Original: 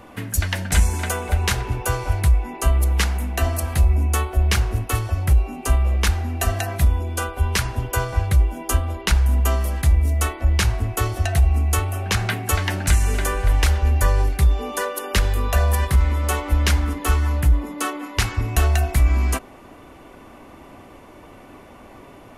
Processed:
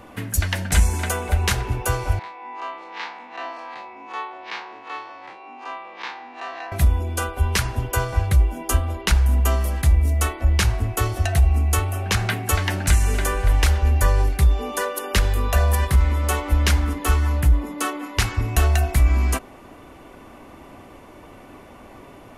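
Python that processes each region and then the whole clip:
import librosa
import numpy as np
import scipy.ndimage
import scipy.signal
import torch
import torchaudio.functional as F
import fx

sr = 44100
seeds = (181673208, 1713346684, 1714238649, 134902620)

y = fx.chain(x, sr, fx.spec_blur(span_ms=81.0),
    fx.cabinet(low_hz=380.0, low_slope=24, high_hz=3900.0, hz=(400.0, 620.0, 940.0, 1400.0, 3000.0), db=(-10, -9, 7, -5, -5)), at=(2.19, 6.72))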